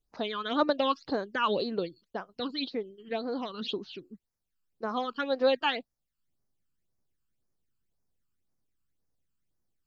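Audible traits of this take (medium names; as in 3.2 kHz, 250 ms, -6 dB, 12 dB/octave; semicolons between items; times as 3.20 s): phasing stages 12, 1.9 Hz, lowest notch 620–3300 Hz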